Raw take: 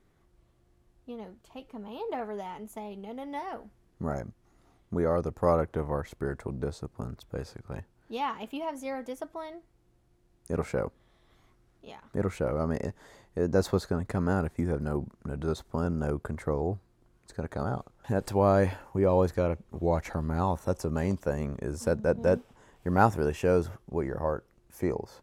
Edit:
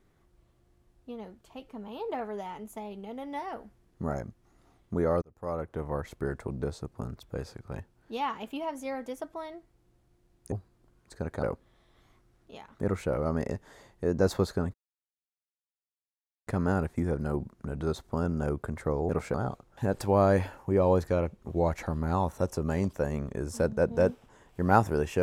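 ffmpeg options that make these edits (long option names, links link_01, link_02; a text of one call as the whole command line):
ffmpeg -i in.wav -filter_complex "[0:a]asplit=7[link_01][link_02][link_03][link_04][link_05][link_06][link_07];[link_01]atrim=end=5.22,asetpts=PTS-STARTPTS,afade=type=out:start_time=5.216:duration=0.004:curve=hsin[link_08];[link_02]atrim=start=5.22:end=10.522,asetpts=PTS-STARTPTS,afade=type=in:duration=0.88[link_09];[link_03]atrim=start=16.698:end=17.612[link_10];[link_04]atrim=start=10.768:end=14.08,asetpts=PTS-STARTPTS,afade=type=out:start_time=3.308:duration=0.004:curve=hsin,apad=pad_dur=1.73[link_11];[link_05]atrim=start=14.08:end=16.702,asetpts=PTS-STARTPTS,afade=type=in:duration=0.004:curve=hsin[link_12];[link_06]atrim=start=10.518:end=10.772[link_13];[link_07]atrim=start=17.608[link_14];[link_08][link_09]concat=n=2:v=0:a=1[link_15];[link_15][link_10]acrossfade=duration=0.004:curve1=hsin:curve2=hsin[link_16];[link_11][link_12]concat=n=2:v=0:a=1[link_17];[link_16][link_17]acrossfade=duration=0.004:curve1=hsin:curve2=hsin[link_18];[link_18][link_13]acrossfade=duration=0.004:curve1=hsin:curve2=hsin[link_19];[link_19][link_14]acrossfade=duration=0.004:curve1=hsin:curve2=hsin" out.wav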